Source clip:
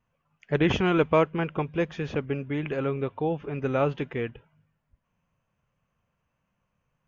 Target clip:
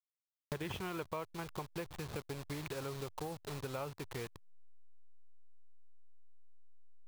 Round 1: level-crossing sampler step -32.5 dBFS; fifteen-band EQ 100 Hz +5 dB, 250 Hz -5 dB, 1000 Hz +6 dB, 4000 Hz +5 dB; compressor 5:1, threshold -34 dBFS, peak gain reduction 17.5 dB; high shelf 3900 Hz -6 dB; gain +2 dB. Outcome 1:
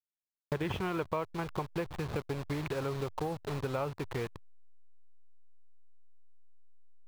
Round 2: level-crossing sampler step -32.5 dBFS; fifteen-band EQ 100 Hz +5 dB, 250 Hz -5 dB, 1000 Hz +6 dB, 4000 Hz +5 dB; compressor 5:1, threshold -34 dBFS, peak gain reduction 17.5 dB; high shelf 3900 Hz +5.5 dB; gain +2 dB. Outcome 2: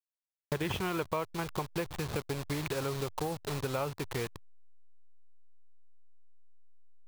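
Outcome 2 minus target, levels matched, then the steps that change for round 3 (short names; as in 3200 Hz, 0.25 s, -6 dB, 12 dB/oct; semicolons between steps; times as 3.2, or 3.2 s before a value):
compressor: peak gain reduction -7.5 dB
change: compressor 5:1, threshold -43.5 dBFS, peak gain reduction 25 dB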